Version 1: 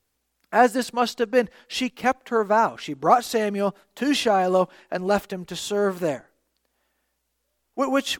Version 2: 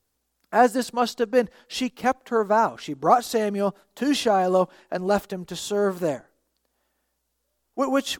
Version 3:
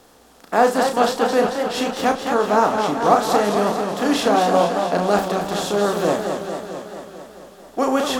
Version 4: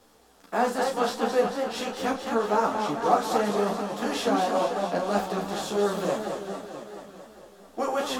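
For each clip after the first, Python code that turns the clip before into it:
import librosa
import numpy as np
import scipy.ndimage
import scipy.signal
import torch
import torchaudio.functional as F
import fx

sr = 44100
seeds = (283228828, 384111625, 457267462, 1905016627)

y1 = fx.peak_eq(x, sr, hz=2300.0, db=-5.0, octaves=1.1)
y2 = fx.bin_compress(y1, sr, power=0.6)
y2 = fx.room_early_taps(y2, sr, ms=(34, 72), db=(-6.0, -16.5))
y2 = fx.echo_warbled(y2, sr, ms=221, feedback_pct=67, rate_hz=2.8, cents=138, wet_db=-6.0)
y2 = y2 * librosa.db_to_amplitude(-1.0)
y3 = fx.ensemble(y2, sr)
y3 = y3 * librosa.db_to_amplitude(-4.5)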